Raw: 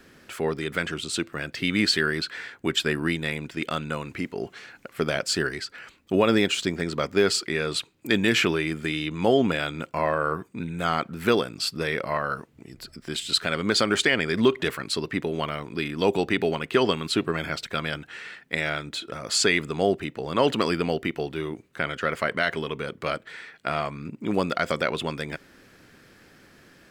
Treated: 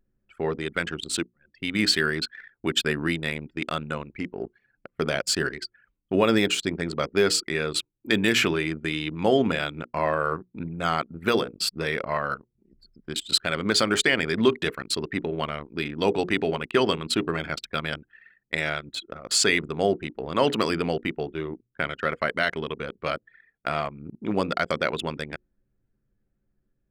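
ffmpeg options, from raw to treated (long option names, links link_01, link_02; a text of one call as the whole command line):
ffmpeg -i in.wav -filter_complex "[0:a]asplit=2[link_01][link_02];[link_01]atrim=end=1.26,asetpts=PTS-STARTPTS,afade=type=out:start_time=1.256:duration=0.004:curve=hsin[link_03];[link_02]atrim=start=1.26,asetpts=PTS-STARTPTS,afade=type=in:duration=0.6[link_04];[link_03][link_04]concat=n=2:v=0:a=1,bandreject=frequency=60:width_type=h:width=6,bandreject=frequency=120:width_type=h:width=6,bandreject=frequency=180:width_type=h:width=6,bandreject=frequency=240:width_type=h:width=6,bandreject=frequency=300:width_type=h:width=6,bandreject=frequency=360:width_type=h:width=6,bandreject=frequency=420:width_type=h:width=6,bandreject=frequency=480:width_type=h:width=6,anlmdn=25.1,highshelf=frequency=9500:gain=6.5" out.wav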